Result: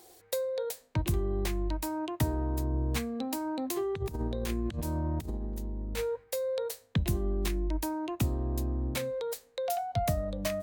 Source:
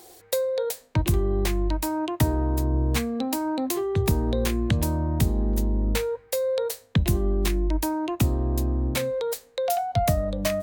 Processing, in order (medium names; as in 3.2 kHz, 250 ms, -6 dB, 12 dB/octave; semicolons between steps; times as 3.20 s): 3.76–6.24 s: compressor with a negative ratio -25 dBFS, ratio -0.5; trim -7 dB